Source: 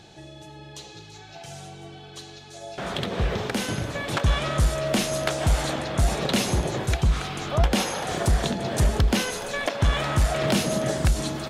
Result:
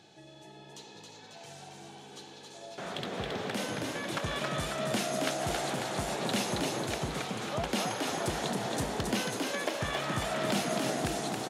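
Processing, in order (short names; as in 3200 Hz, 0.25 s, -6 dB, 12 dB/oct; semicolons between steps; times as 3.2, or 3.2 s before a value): HPF 150 Hz 12 dB/oct; frequency-shifting echo 0.272 s, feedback 58%, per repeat +61 Hz, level -3.5 dB; gain -8 dB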